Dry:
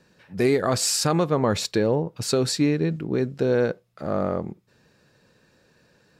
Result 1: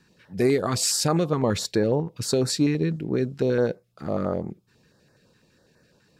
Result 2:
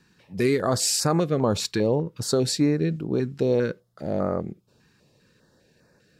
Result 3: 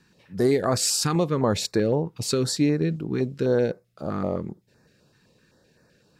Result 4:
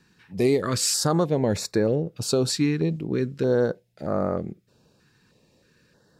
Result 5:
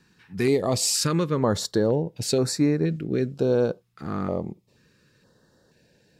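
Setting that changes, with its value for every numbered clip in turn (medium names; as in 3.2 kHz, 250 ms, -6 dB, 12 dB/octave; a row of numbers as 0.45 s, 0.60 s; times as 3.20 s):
step-sequenced notch, rate: 12 Hz, 5 Hz, 7.8 Hz, 3.2 Hz, 2.1 Hz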